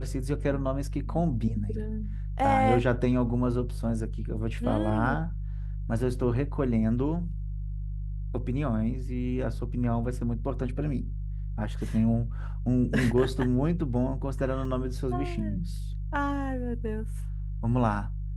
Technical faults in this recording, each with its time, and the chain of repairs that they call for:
hum 50 Hz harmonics 3 -33 dBFS
14.65 gap 3.1 ms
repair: de-hum 50 Hz, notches 3; interpolate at 14.65, 3.1 ms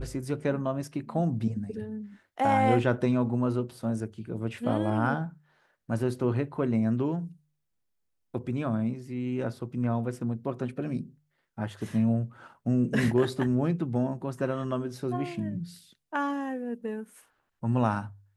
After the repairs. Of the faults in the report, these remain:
none

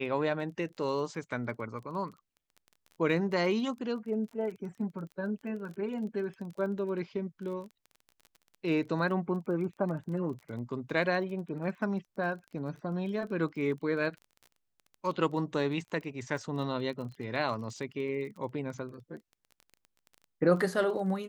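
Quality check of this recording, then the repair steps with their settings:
crackle 22/s -41 dBFS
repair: de-click

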